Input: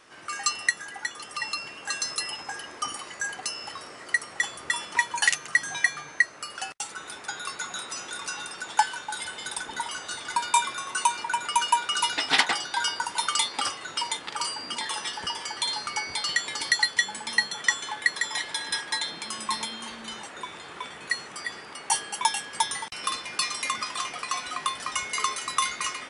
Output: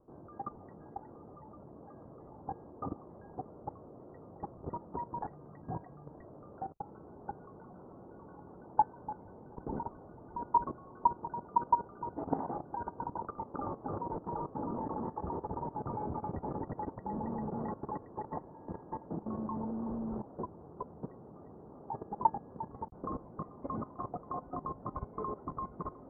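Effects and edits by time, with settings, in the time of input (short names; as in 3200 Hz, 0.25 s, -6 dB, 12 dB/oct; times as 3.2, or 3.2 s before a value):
13.26–18.48 echo 0.27 s -3.5 dB
whole clip: Bessel low-pass 530 Hz, order 8; low shelf 230 Hz +9.5 dB; level quantiser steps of 15 dB; gain +8 dB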